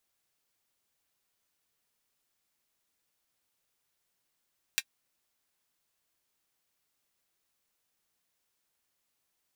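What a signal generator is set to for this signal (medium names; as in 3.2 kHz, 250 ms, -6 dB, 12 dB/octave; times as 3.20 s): closed hi-hat, high-pass 2.1 kHz, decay 0.06 s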